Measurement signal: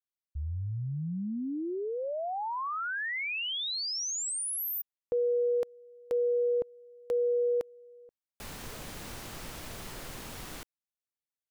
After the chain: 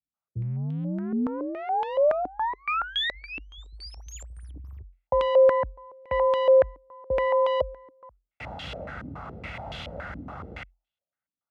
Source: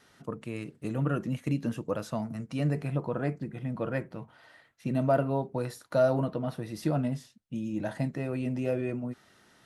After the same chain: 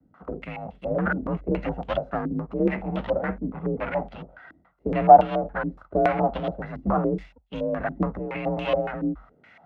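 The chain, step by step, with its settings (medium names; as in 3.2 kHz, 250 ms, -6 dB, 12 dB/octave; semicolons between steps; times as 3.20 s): comb filter that takes the minimum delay 1.5 ms; frequency shift +44 Hz; step-sequenced low-pass 7.1 Hz 290–3200 Hz; trim +5 dB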